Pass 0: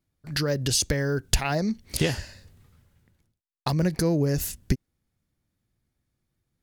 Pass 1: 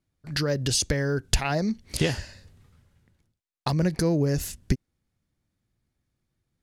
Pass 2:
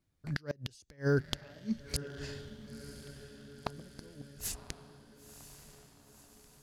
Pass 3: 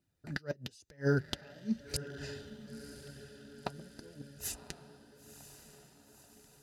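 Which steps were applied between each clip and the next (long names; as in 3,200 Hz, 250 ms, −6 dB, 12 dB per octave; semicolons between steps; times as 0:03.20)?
Bessel low-pass filter 10,000 Hz, order 2
gate with flip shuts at −15 dBFS, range −33 dB; feedback delay with all-pass diffusion 1,001 ms, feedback 56%, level −12 dB; level −1 dB
flanger 0.94 Hz, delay 0.3 ms, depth 5.6 ms, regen −48%; notch comb filter 1,100 Hz; level +4.5 dB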